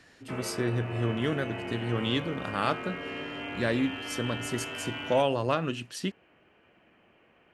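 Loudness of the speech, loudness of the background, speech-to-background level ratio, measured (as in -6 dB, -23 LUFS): -31.0 LUFS, -37.5 LUFS, 6.5 dB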